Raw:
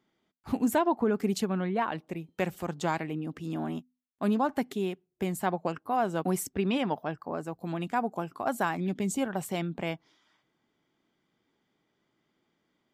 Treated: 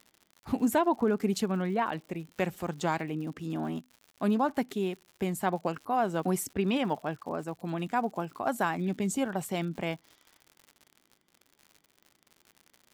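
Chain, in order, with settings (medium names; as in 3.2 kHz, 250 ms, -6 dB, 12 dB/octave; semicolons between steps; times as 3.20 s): crackle 110 per s -42 dBFS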